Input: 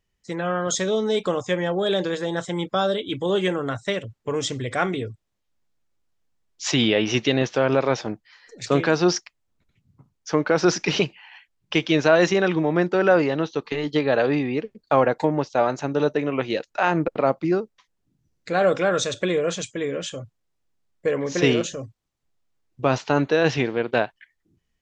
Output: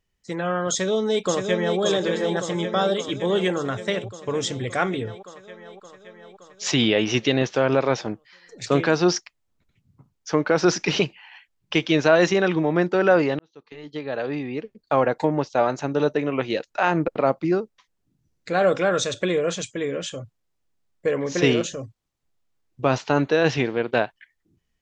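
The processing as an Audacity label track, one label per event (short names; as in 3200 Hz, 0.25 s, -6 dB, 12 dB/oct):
0.710000	1.800000	echo throw 0.57 s, feedback 70%, level -5.5 dB
5.070000	6.640000	bell 1300 Hz +9 dB 2.2 oct
13.390000	15.330000	fade in linear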